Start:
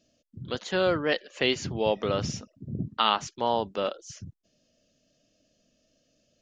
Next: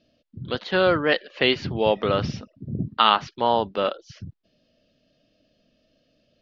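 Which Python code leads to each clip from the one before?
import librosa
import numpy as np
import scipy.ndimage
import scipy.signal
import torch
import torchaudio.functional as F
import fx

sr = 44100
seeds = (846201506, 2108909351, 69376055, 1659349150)

y = scipy.signal.sosfilt(scipy.signal.butter(6, 4700.0, 'lowpass', fs=sr, output='sos'), x)
y = fx.dynamic_eq(y, sr, hz=1400.0, q=1.2, threshold_db=-36.0, ratio=4.0, max_db=3)
y = y * 10.0 ** (4.5 / 20.0)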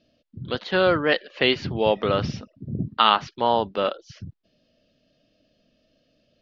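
y = x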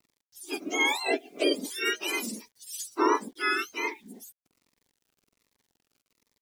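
y = fx.octave_mirror(x, sr, pivot_hz=1100.0)
y = fx.quant_dither(y, sr, seeds[0], bits=10, dither='none')
y = fx.notch_cascade(y, sr, direction='falling', hz=1.3)
y = y * 10.0 ** (-2.5 / 20.0)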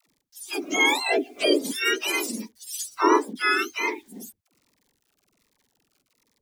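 y = fx.dispersion(x, sr, late='lows', ms=91.0, hz=380.0)
y = y * 10.0 ** (5.0 / 20.0)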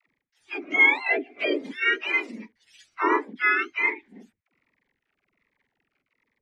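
y = fx.lowpass_res(x, sr, hz=2100.0, q=3.5)
y = y * 10.0 ** (-5.5 / 20.0)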